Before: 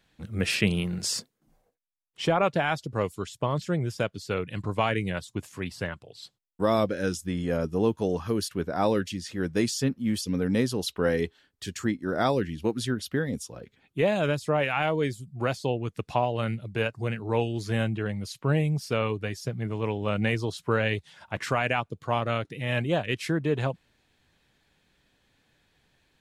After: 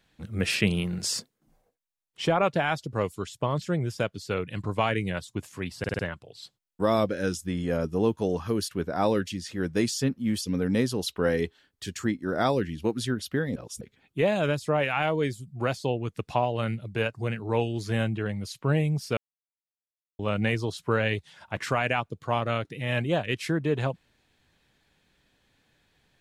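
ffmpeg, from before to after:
ffmpeg -i in.wav -filter_complex "[0:a]asplit=9[link_01][link_02][link_03][link_04][link_05][link_06][link_07][link_08][link_09];[link_01]atrim=end=5.842[link_10];[link_02]atrim=start=5.788:end=5.842[link_11];[link_03]atrim=start=5.788:end=5.842[link_12];[link_04]atrim=start=5.788:end=5.842[link_13];[link_05]atrim=start=5.788:end=13.362[link_14];[link_06]atrim=start=13.358:end=13.612,asetpts=PTS-STARTPTS,areverse[link_15];[link_07]atrim=start=13.608:end=18.97,asetpts=PTS-STARTPTS,afade=type=out:start_time=5.358:duration=0.004:curve=hsin[link_16];[link_08]atrim=start=18.97:end=19.99,asetpts=PTS-STARTPTS,volume=0[link_17];[link_09]atrim=start=19.99,asetpts=PTS-STARTPTS,afade=type=in:duration=0.004:curve=hsin[link_18];[link_10][link_11]acrossfade=duration=0.004:curve1=hsin:curve2=hsin[link_19];[link_19][link_12]acrossfade=duration=0.004:curve1=hsin:curve2=hsin[link_20];[link_20][link_13]acrossfade=duration=0.004:curve1=hsin:curve2=hsin[link_21];[link_21][link_14]acrossfade=duration=0.004:curve1=hsin:curve2=hsin[link_22];[link_22][link_15]acrossfade=duration=0.004:curve1=hsin:curve2=hsin[link_23];[link_16][link_17][link_18]concat=n=3:v=0:a=1[link_24];[link_23][link_24]acrossfade=duration=0.004:curve1=hsin:curve2=hsin" out.wav

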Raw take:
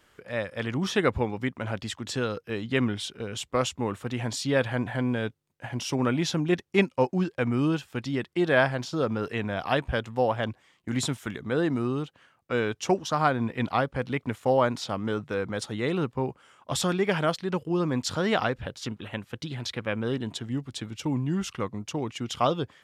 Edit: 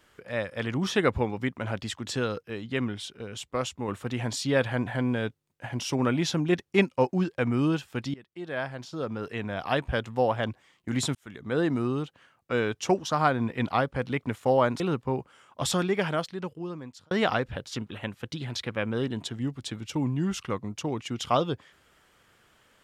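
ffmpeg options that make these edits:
ffmpeg -i in.wav -filter_complex "[0:a]asplit=7[link_01][link_02][link_03][link_04][link_05][link_06][link_07];[link_01]atrim=end=2.432[link_08];[link_02]atrim=start=2.428:end=3.882,asetpts=PTS-STARTPTS,volume=-4dB[link_09];[link_03]atrim=start=3.878:end=8.14,asetpts=PTS-STARTPTS,afade=type=out:start_time=4.258:duration=0.004:curve=hsin:silence=0.0749894[link_10];[link_04]atrim=start=8.14:end=11.15,asetpts=PTS-STARTPTS,afade=type=in:duration=1.87:silence=0.0749894,afade=type=out:start_time=3.006:duration=0.004:curve=hsin[link_11];[link_05]atrim=start=11.15:end=14.802,asetpts=PTS-STARTPTS,afade=type=in:duration=0.44[link_12];[link_06]atrim=start=15.898:end=18.21,asetpts=PTS-STARTPTS,afade=type=out:start_time=0.972:duration=1.34[link_13];[link_07]atrim=start=18.21,asetpts=PTS-STARTPTS,afade=type=in:duration=0.004:curve=hsin[link_14];[link_08][link_09]acrossfade=duration=0.004:curve1=hsin:curve2=hsin[link_15];[link_10][link_11][link_12]concat=n=3:v=0:a=1[link_16];[link_15][link_16]acrossfade=duration=0.004:curve1=hsin:curve2=hsin[link_17];[link_13][link_14]concat=n=2:v=0:a=1[link_18];[link_17][link_18]acrossfade=duration=0.004:curve1=hsin:curve2=hsin" out.wav

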